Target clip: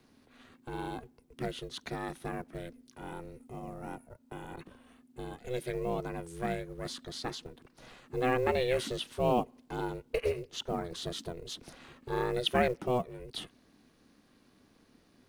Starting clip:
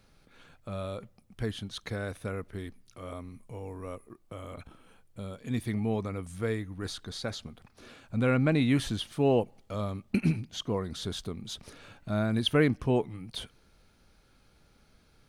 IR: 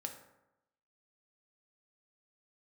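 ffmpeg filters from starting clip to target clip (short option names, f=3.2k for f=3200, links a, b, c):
-filter_complex "[0:a]aeval=exprs='val(0)*sin(2*PI*250*n/s)':c=same,acrossover=split=160|3000[a][b][c];[a]acompressor=threshold=-47dB:ratio=3[d];[d][b][c]amix=inputs=3:normalize=0,acrusher=bits=8:mode=log:mix=0:aa=0.000001,volume=1dB"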